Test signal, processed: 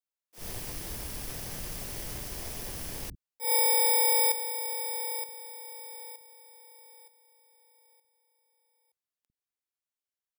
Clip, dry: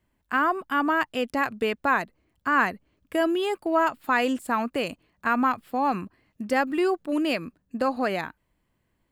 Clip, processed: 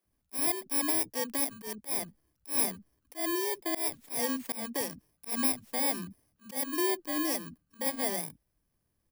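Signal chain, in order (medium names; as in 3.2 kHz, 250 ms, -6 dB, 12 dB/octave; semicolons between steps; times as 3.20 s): bit-reversed sample order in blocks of 32 samples; bands offset in time highs, lows 50 ms, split 240 Hz; slow attack 144 ms; trim -5 dB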